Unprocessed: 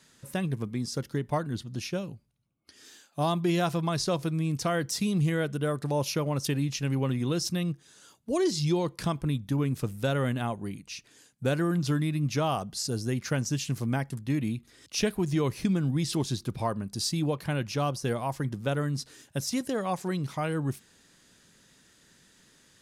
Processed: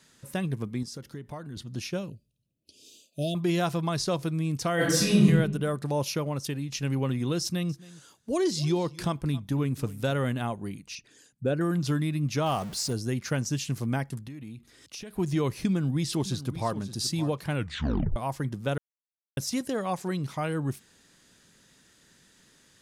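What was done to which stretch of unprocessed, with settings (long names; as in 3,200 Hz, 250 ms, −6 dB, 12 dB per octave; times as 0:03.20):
0:00.83–0:01.57: downward compressor 3 to 1, threshold −38 dBFS
0:02.10–0:03.35: Chebyshev band-stop filter 650–2,500 Hz, order 5
0:04.75–0:05.24: thrown reverb, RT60 0.92 s, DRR −8 dB
0:06.07–0:06.72: fade out, to −6.5 dB
0:07.42–0:10.31: single-tap delay 271 ms −20 dB
0:10.95–0:11.61: spectral envelope exaggerated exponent 1.5
0:12.46–0:12.93: converter with a step at zero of −37.5 dBFS
0:14.24–0:15.17: downward compressor 12 to 1, threshold −37 dBFS
0:15.68–0:16.76: delay throw 570 ms, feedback 20%, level −13.5 dB
0:17.55: tape stop 0.61 s
0:18.78–0:19.37: silence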